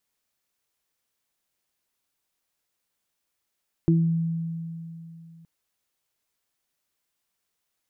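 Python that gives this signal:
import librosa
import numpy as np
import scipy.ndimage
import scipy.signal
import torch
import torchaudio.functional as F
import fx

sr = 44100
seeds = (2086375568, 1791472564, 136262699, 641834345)

y = fx.additive(sr, length_s=1.57, hz=165.0, level_db=-16.0, upper_db=(-1.5,), decay_s=3.02, upper_decays_s=(0.36,))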